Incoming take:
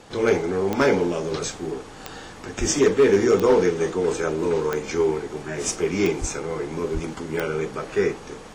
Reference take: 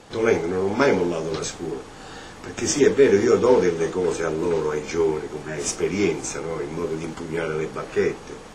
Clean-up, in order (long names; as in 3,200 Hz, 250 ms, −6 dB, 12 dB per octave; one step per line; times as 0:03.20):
clipped peaks rebuilt −10.5 dBFS
click removal
0:02.59–0:02.71: high-pass filter 140 Hz 24 dB per octave
0:06.20–0:06.32: high-pass filter 140 Hz 24 dB per octave
0:06.93–0:07.05: high-pass filter 140 Hz 24 dB per octave